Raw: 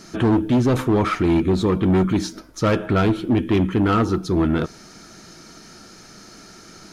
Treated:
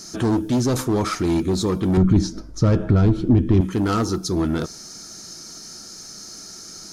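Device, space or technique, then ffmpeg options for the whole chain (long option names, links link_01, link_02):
over-bright horn tweeter: -filter_complex "[0:a]asettb=1/sr,asplit=3[link_01][link_02][link_03];[link_01]atrim=end=1.974[link_04];[link_02]atrim=start=1.97:end=3.61,asetpts=PTS-STARTPTS,afade=type=in:duration=0.004:curve=qsin,afade=type=out:start_time=1.636:duration=0.004:curve=qsin,aemphasis=mode=reproduction:type=riaa[link_05];[link_03]atrim=start=3.606[link_06];[link_04][link_05]acrossfade=duration=0.004:curve1=hsin:curve2=qsin[link_07];[link_07][link_06]acrossfade=duration=0.004:curve1=qsin:curve2=hsin,highshelf=frequency=3900:width_type=q:width=1.5:gain=10.5,alimiter=limit=-4.5dB:level=0:latency=1:release=102,volume=-2.5dB"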